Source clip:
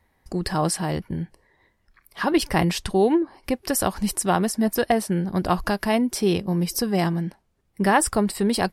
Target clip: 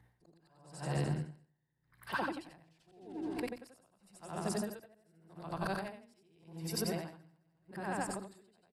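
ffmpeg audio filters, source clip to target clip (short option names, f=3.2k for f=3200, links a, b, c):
-filter_complex "[0:a]afftfilt=real='re':imag='-im':win_size=8192:overlap=0.75,asetrate=41625,aresample=44100,atempo=1.05946,acrossover=split=290[a][b];[b]acompressor=threshold=-30dB:ratio=4[c];[a][c]amix=inputs=2:normalize=0,bass=f=250:g=-14,treble=f=4k:g=-3,bandreject=f=60:t=h:w=6,bandreject=f=120:t=h:w=6,bandreject=f=180:t=h:w=6,bandreject=f=240:t=h:w=6,aecho=1:1:212|424|636:0.224|0.0694|0.0215,acompressor=threshold=-41dB:ratio=10,aeval=exprs='val(0)+0.000224*(sin(2*PI*60*n/s)+sin(2*PI*2*60*n/s)/2+sin(2*PI*3*60*n/s)/3+sin(2*PI*4*60*n/s)/4+sin(2*PI*5*60*n/s)/5)':c=same,equalizer=f=130:t=o:w=0.65:g=15,aeval=exprs='val(0)*pow(10,-35*(0.5-0.5*cos(2*PI*0.86*n/s))/20)':c=same,volume=8.5dB"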